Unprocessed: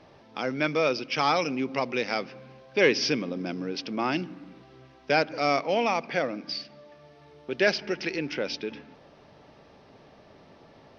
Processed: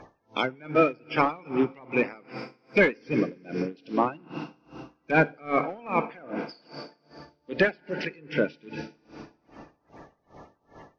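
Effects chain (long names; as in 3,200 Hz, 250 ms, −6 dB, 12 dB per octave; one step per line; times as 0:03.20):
spectral magnitudes quantised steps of 30 dB
gain into a clipping stage and back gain 18.5 dB
feedback delay network reverb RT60 2.9 s, low-frequency decay 1.25×, high-frequency decay 0.8×, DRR 11 dB
treble cut that deepens with the level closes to 1,900 Hz, closed at −26 dBFS
tremolo with a sine in dB 2.5 Hz, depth 28 dB
level +7.5 dB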